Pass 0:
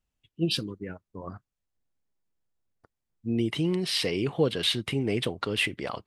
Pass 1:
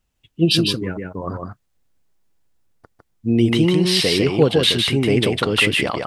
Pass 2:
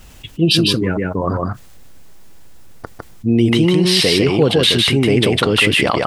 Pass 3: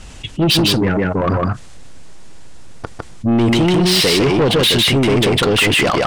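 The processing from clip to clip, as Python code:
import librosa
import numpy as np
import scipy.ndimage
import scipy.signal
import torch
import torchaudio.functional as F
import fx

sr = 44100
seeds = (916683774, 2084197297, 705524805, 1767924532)

y1 = fx.rider(x, sr, range_db=3, speed_s=2.0)
y1 = y1 + 10.0 ** (-3.5 / 20.0) * np.pad(y1, (int(154 * sr / 1000.0), 0))[:len(y1)]
y1 = y1 * 10.0 ** (9.0 / 20.0)
y2 = fx.env_flatten(y1, sr, amount_pct=50)
y3 = scipy.signal.sosfilt(scipy.signal.butter(6, 9700.0, 'lowpass', fs=sr, output='sos'), y2)
y3 = 10.0 ** (-16.5 / 20.0) * np.tanh(y3 / 10.0 ** (-16.5 / 20.0))
y3 = y3 * 10.0 ** (6.0 / 20.0)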